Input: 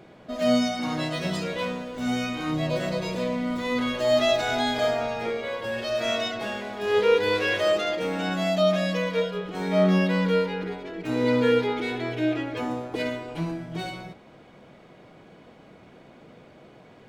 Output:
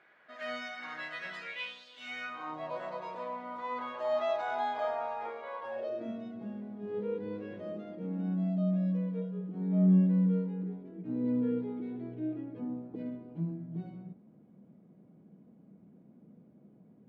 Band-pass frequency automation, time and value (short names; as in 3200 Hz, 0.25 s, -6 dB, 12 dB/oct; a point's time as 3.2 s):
band-pass, Q 3.2
1.41 s 1700 Hz
1.86 s 4300 Hz
2.45 s 960 Hz
5.67 s 960 Hz
6.14 s 200 Hz